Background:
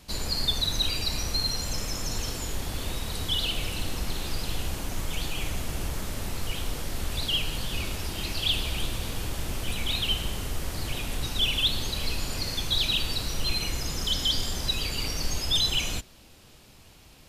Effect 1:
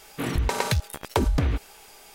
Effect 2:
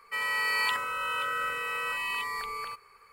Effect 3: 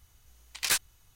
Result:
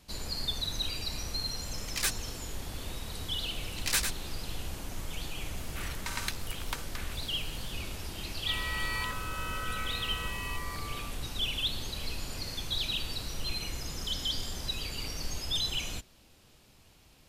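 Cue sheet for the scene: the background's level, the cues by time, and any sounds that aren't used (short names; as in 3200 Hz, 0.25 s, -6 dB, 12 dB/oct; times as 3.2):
background -7 dB
1.33 add 3 -5 dB + phaser 2 Hz, delay 2.8 ms, feedback 37%
3.23 add 3 -2.5 dB + echo 0.102 s -6 dB
5.57 add 1 -6 dB + HPF 1200 Hz 24 dB/oct
8.35 add 2 -7.5 dB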